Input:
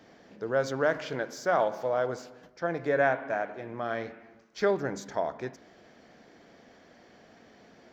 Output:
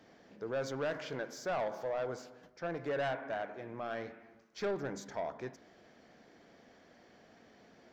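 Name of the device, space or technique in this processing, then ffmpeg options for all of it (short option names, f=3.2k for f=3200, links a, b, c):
saturation between pre-emphasis and de-emphasis: -af "highshelf=f=6.3k:g=8,asoftclip=type=tanh:threshold=-24.5dB,highshelf=f=6.3k:g=-8,volume=-5dB"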